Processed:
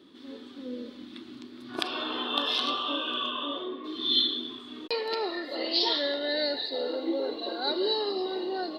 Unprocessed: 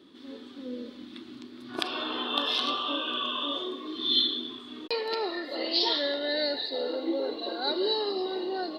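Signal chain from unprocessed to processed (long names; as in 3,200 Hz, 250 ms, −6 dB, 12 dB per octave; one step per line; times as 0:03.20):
0:03.29–0:03.83: low-pass filter 3,800 Hz → 2,200 Hz 12 dB per octave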